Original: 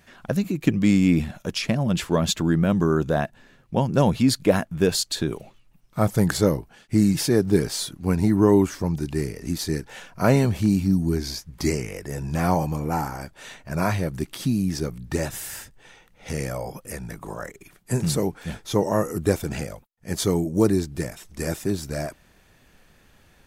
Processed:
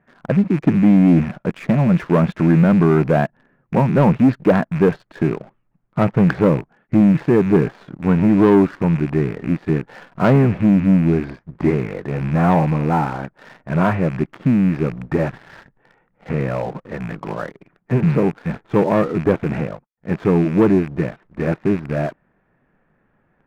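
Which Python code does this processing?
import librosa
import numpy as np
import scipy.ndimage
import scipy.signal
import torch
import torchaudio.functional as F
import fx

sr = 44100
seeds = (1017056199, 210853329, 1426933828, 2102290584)

y = fx.rattle_buzz(x, sr, strikes_db=-31.0, level_db=-23.0)
y = scipy.signal.sosfilt(scipy.signal.butter(4, 1800.0, 'lowpass', fs=sr, output='sos'), y)
y = fx.leveller(y, sr, passes=2)
y = fx.low_shelf_res(y, sr, hz=110.0, db=-7.5, q=1.5)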